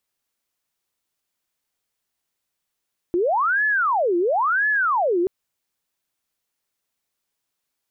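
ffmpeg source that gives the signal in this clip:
-f lavfi -i "aevalsrc='0.141*sin(2*PI*(1031.5*t-688.5/(2*PI*0.97)*sin(2*PI*0.97*t)))':d=2.13:s=44100"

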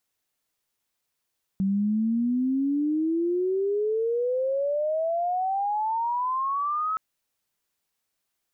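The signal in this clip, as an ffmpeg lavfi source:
-f lavfi -i "aevalsrc='pow(10,(-21-3*t/5.37)/20)*sin(2*PI*190*5.37/log(1300/190)*(exp(log(1300/190)*t/5.37)-1))':d=5.37:s=44100"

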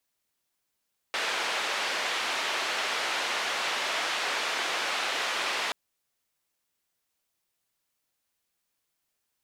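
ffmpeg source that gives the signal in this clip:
-f lavfi -i "anoisesrc=c=white:d=4.58:r=44100:seed=1,highpass=f=510,lowpass=f=3100,volume=-16.3dB"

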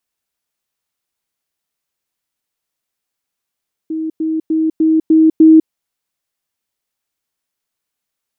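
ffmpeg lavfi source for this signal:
-f lavfi -i "aevalsrc='pow(10,(-17.5+3*floor(t/0.3))/20)*sin(2*PI*318*t)*clip(min(mod(t,0.3),0.2-mod(t,0.3))/0.005,0,1)':d=1.8:s=44100"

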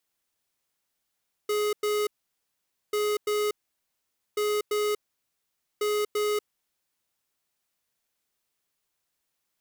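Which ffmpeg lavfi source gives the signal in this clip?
-f lavfi -i "aevalsrc='0.0501*(2*lt(mod(419*t,1),0.5)-1)*clip(min(mod(mod(t,1.44),0.34),0.24-mod(mod(t,1.44),0.34))/0.005,0,1)*lt(mod(t,1.44),0.68)':d=5.76:s=44100"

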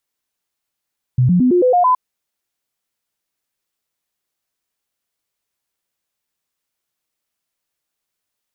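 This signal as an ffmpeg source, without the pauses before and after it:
-f lavfi -i "aevalsrc='0.335*clip(min(mod(t,0.11),0.11-mod(t,0.11))/0.005,0,1)*sin(2*PI*126*pow(2,floor(t/0.11)/2)*mod(t,0.11))':d=0.77:s=44100"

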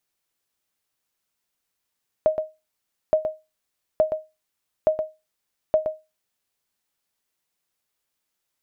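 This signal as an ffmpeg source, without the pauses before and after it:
-f lavfi -i "aevalsrc='0.316*(sin(2*PI*625*mod(t,0.87))*exp(-6.91*mod(t,0.87)/0.24)+0.398*sin(2*PI*625*max(mod(t,0.87)-0.12,0))*exp(-6.91*max(mod(t,0.87)-0.12,0)/0.24))':d=4.35:s=44100"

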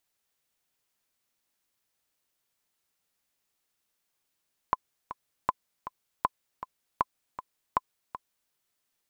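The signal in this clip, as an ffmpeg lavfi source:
-f lavfi -i "aevalsrc='pow(10,(-10-13*gte(mod(t,2*60/158),60/158))/20)*sin(2*PI*1020*mod(t,60/158))*exp(-6.91*mod(t,60/158)/0.03)':d=3.79:s=44100"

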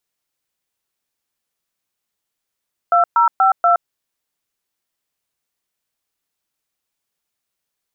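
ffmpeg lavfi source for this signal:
-f lavfi -i "aevalsrc='0.237*clip(min(mod(t,0.24),0.119-mod(t,0.24))/0.002,0,1)*(eq(floor(t/0.24),0)*(sin(2*PI*697*mod(t,0.24))+sin(2*PI*1336*mod(t,0.24)))+eq(floor(t/0.24),1)*(sin(2*PI*941*mod(t,0.24))+sin(2*PI*1336*mod(t,0.24)))+eq(floor(t/0.24),2)*(sin(2*PI*770*mod(t,0.24))+sin(2*PI*1336*mod(t,0.24)))+eq(floor(t/0.24),3)*(sin(2*PI*697*mod(t,0.24))+sin(2*PI*1336*mod(t,0.24))))':d=0.96:s=44100"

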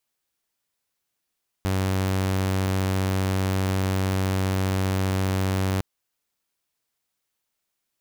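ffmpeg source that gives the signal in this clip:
-f lavfi -i "aevalsrc='0.112*(2*mod(95.1*t,1)-1)':d=4.16:s=44100"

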